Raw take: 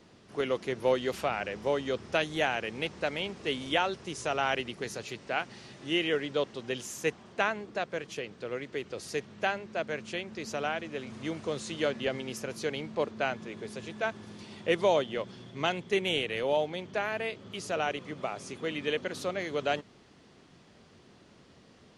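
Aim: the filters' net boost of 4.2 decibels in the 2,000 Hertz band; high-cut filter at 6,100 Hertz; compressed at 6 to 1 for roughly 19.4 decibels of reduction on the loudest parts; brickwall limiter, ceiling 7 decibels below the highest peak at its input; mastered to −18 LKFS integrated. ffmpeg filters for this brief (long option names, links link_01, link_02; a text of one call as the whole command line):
ffmpeg -i in.wav -af "lowpass=6100,equalizer=frequency=2000:width_type=o:gain=5.5,acompressor=threshold=-43dB:ratio=6,volume=29.5dB,alimiter=limit=-5dB:level=0:latency=1" out.wav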